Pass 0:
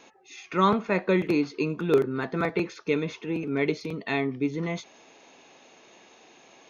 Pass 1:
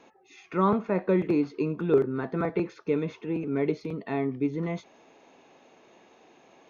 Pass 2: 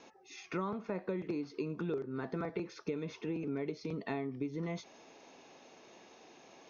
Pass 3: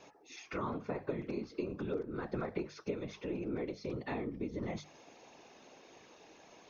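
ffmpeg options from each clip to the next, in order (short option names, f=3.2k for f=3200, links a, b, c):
-filter_complex "[0:a]highshelf=f=2.2k:g=-12,acrossover=split=1500[a][b];[b]alimiter=level_in=12dB:limit=-24dB:level=0:latency=1:release=46,volume=-12dB[c];[a][c]amix=inputs=2:normalize=0"
-af "acompressor=threshold=-32dB:ratio=12,lowpass=f=5.6k:t=q:w=3.4,volume=-1.5dB"
-af "afftfilt=real='hypot(re,im)*cos(2*PI*random(0))':imag='hypot(re,im)*sin(2*PI*random(1))':win_size=512:overlap=0.75,bandreject=f=50:t=h:w=6,bandreject=f=100:t=h:w=6,bandreject=f=150:t=h:w=6,bandreject=f=200:t=h:w=6,volume=5.5dB"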